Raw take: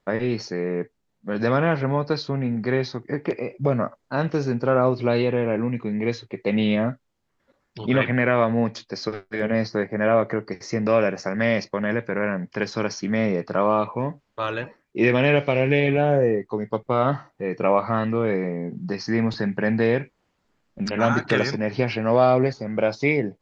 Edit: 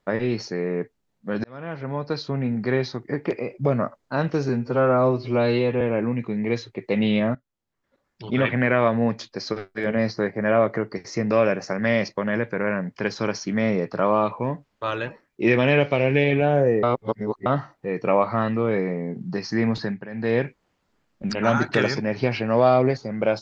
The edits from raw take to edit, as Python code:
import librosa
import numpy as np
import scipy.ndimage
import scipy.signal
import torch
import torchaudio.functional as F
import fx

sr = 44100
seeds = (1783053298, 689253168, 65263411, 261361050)

y = fx.edit(x, sr, fx.fade_in_span(start_s=1.44, length_s=0.98),
    fx.stretch_span(start_s=4.49, length_s=0.88, factor=1.5),
    fx.fade_in_from(start_s=6.91, length_s=1.27, floor_db=-14.5),
    fx.reverse_span(start_s=16.39, length_s=0.63),
    fx.fade_down_up(start_s=19.36, length_s=0.58, db=-15.0, fade_s=0.27), tone=tone)